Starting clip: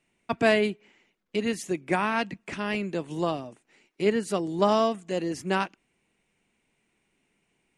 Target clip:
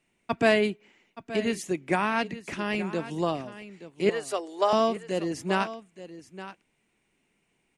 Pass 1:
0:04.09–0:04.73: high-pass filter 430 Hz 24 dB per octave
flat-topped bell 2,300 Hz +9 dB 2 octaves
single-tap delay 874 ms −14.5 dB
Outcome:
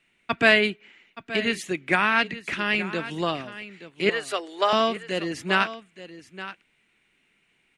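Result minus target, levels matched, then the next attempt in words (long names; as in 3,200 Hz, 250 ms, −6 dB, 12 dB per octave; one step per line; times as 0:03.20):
2,000 Hz band +5.0 dB
0:04.09–0:04.73: high-pass filter 430 Hz 24 dB per octave
single-tap delay 874 ms −14.5 dB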